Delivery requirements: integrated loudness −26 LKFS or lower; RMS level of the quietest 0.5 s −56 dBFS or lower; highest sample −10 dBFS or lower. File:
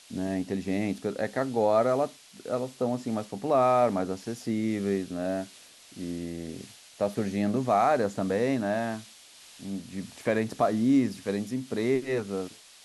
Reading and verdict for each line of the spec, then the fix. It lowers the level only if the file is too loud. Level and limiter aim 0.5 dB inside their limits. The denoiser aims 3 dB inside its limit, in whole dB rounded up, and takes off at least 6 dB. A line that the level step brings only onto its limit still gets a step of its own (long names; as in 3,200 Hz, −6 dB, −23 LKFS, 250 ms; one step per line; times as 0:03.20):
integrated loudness −28.5 LKFS: in spec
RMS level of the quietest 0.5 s −52 dBFS: out of spec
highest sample −12.0 dBFS: in spec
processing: broadband denoise 7 dB, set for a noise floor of −52 dBFS